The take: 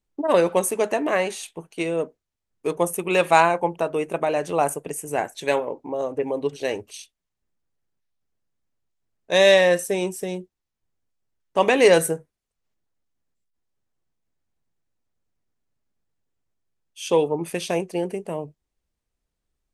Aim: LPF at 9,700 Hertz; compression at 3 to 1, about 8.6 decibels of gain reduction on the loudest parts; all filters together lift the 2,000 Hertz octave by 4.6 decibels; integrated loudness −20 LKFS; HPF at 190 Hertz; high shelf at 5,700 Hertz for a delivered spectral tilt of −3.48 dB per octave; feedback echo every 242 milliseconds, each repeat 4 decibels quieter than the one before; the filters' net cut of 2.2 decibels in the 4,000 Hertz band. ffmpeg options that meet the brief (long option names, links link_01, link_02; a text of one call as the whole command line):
ffmpeg -i in.wav -af "highpass=190,lowpass=9700,equalizer=frequency=2000:width_type=o:gain=7,equalizer=frequency=4000:width_type=o:gain=-6.5,highshelf=frequency=5700:gain=3,acompressor=threshold=-21dB:ratio=3,aecho=1:1:242|484|726|968|1210|1452|1694|1936|2178:0.631|0.398|0.25|0.158|0.0994|0.0626|0.0394|0.0249|0.0157,volume=5dB" out.wav